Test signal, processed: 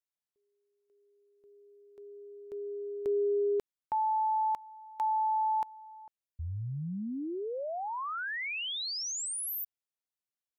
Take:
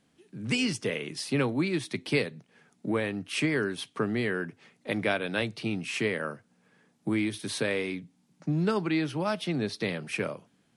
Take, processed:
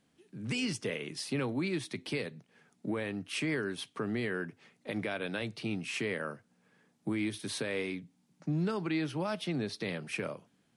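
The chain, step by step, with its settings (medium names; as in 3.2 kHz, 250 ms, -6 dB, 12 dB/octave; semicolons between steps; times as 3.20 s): peak limiter -21 dBFS; trim -3.5 dB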